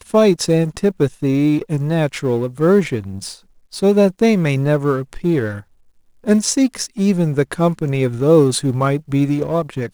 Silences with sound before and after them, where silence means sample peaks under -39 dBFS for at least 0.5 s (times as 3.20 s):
5.62–6.24 s